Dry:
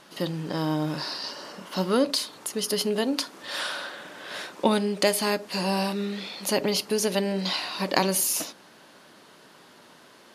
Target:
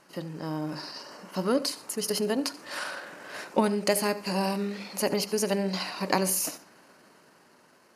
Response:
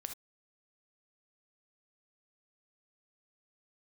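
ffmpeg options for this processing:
-filter_complex "[0:a]asplit=2[link_01][link_02];[1:a]atrim=start_sample=2205,adelay=101[link_03];[link_02][link_03]afir=irnorm=-1:irlink=0,volume=-13.5dB[link_04];[link_01][link_04]amix=inputs=2:normalize=0,dynaudnorm=framelen=360:gausssize=9:maxgain=6dB,atempo=1.3,equalizer=frequency=3500:width=4.5:gain=-13.5,volume=-6dB"

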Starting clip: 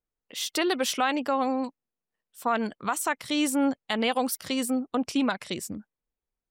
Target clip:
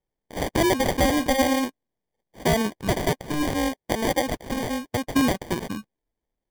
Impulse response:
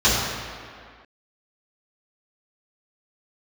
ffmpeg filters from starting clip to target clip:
-filter_complex "[0:a]asettb=1/sr,asplit=3[link_01][link_02][link_03];[link_01]atrim=end=3.344[link_04];[link_02]atrim=start=3.34:end=5.16,asetpts=PTS-STARTPTS,afade=type=in:duration=0.004:curve=qsin,afade=type=out:start_time=1.816:duration=0.004:curve=qsin,highpass=frequency=560:poles=1[link_05];[link_03]atrim=start=5.156[link_06];[link_04][link_05]acrossfade=duration=0.004:curve1=hsin:curve2=qsin[link_07];[link_07][link_06]acrossfade=duration=0.004:curve1=qsin:curve2=hsin,acrusher=samples=33:mix=1:aa=0.000001,asettb=1/sr,asplit=3[link_08][link_09][link_10];[link_08]atrim=end=1.074[link_11];[link_09]atrim=start=1.07:end=1.65,asetpts=PTS-STARTPTS,afade=type=in:duration=0.004:curve=qsin,afade=type=out:start_time=0.576:duration=0.004:curve=qsin,asplit=2[link_12][link_13];[link_13]adelay=41,volume=-12dB[link_14];[link_12][link_14]amix=inputs=2:normalize=0,atrim=end_sample=25578[link_15];[link_10]atrim=start=1.646[link_16];[link_11][link_15]acrossfade=duration=0.004:curve1=hsin:curve2=qsin[link_17];[link_17][link_16]acrossfade=duration=0.004:curve1=qsin:curve2=hsin,volume=5dB"

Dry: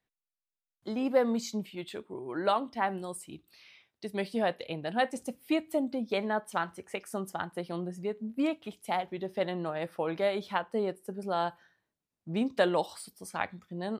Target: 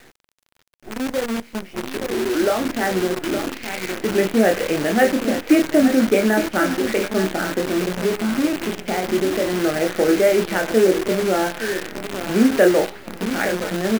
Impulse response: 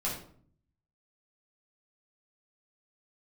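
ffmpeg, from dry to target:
-filter_complex "[0:a]aeval=exprs='val(0)+0.5*0.0211*sgn(val(0))':channel_layout=same,equalizer=frequency=1000:width=1.1:gain=-10.5,acrusher=bits=3:mode=log:mix=0:aa=0.000001,asettb=1/sr,asplit=3[link_01][link_02][link_03];[link_01]atrim=end=7.364[link_04];[link_02]atrim=start=7.36:end=9.64,asetpts=PTS-STARTPTS,afade=type=in:duration=0.004:curve=qsin,afade=type=out:start_time=2.276:duration=0.004:curve=qsin,acompressor=threshold=-35dB:ratio=2.5[link_05];[link_03]atrim=start=9.636[link_06];[link_04][link_05]acrossfade=duration=0.004:curve1=hsin:curve2=qsin[link_07];[link_07][link_06]acrossfade=duration=0.004:curve1=qsin:curve2=hsin,highpass=frequency=210:width=0.5412,highpass=frequency=210:width=1.3066,equalizer=frequency=360:width_type=q:width=4:gain=4,equalizer=frequency=1000:width_type=q:width=4:gain=-9,equalizer=frequency=1500:width_type=q:width=4:gain=4,lowpass=frequency=2200:width=0.5412,lowpass=frequency=2200:width=1.3066,asplit=2[link_08][link_09];[link_09]adelay=27,volume=-5dB[link_10];[link_08][link_10]amix=inputs=2:normalize=0,aecho=1:1:866|1732|2598:0.282|0.0902|0.0289,dynaudnorm=framelen=490:gausssize=9:maxgain=15dB,acrusher=bits=5:dc=4:mix=0:aa=0.000001"

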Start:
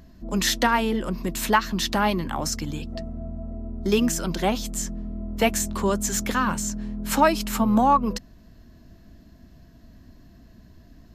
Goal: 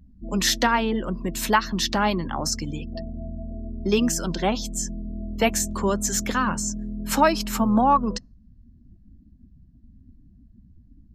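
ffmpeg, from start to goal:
ffmpeg -i in.wav -af "afftdn=noise_reduction=28:noise_floor=-41,adynamicequalizer=threshold=0.00708:dfrequency=5300:dqfactor=2:tfrequency=5300:tqfactor=2:attack=5:release=100:ratio=0.375:range=2:mode=boostabove:tftype=bell" out.wav

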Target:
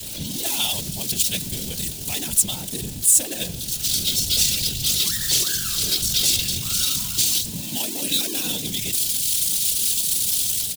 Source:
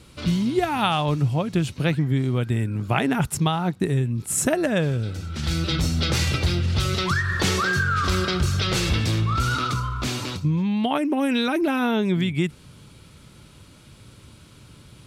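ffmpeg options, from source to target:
ffmpeg -i in.wav -filter_complex "[0:a]aeval=exprs='val(0)+0.5*0.0841*sgn(val(0))':channel_layout=same,equalizer=frequency=1200:width=2.8:gain=-11,bandreject=frequency=51.72:width_type=h:width=4,bandreject=frequency=103.44:width_type=h:width=4,bandreject=frequency=155.16:width_type=h:width=4,bandreject=frequency=206.88:width_type=h:width=4,bandreject=frequency=258.6:width_type=h:width=4,bandreject=frequency=310.32:width_type=h:width=4,bandreject=frequency=362.04:width_type=h:width=4,bandreject=frequency=413.76:width_type=h:width=4,bandreject=frequency=465.48:width_type=h:width=4,acrossover=split=200|960|3200[link_01][link_02][link_03][link_04];[link_04]dynaudnorm=framelen=270:gausssize=3:maxgain=14dB[link_05];[link_01][link_02][link_03][link_05]amix=inputs=4:normalize=0,afftfilt=real='hypot(re,im)*cos(2*PI*random(0))':imag='hypot(re,im)*sin(2*PI*random(1))':win_size=512:overlap=0.75,atempo=1.4,aexciter=amount=3.3:drive=4.6:freq=2900,volume=-7.5dB" out.wav

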